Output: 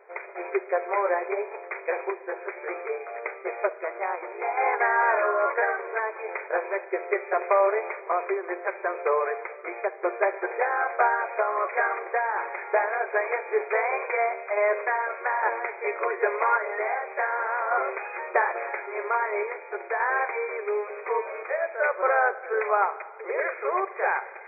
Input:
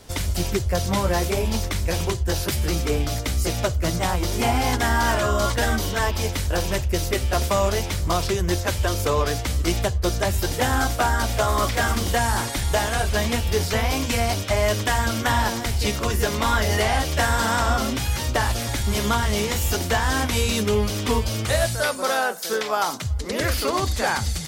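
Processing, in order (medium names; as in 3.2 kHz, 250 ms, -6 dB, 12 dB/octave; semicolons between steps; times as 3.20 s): random-step tremolo; brick-wall FIR band-pass 360–2500 Hz; on a send: reverberation RT60 1.7 s, pre-delay 48 ms, DRR 15 dB; on the sum: trim +1.5 dB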